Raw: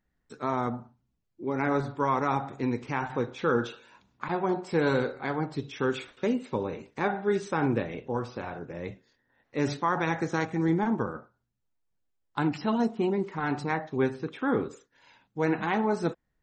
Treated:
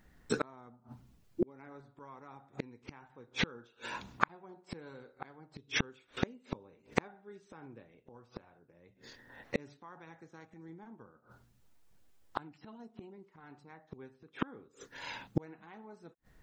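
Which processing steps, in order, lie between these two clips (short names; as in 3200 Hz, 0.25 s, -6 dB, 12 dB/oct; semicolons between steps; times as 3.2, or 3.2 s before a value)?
flipped gate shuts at -31 dBFS, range -40 dB; gain +15 dB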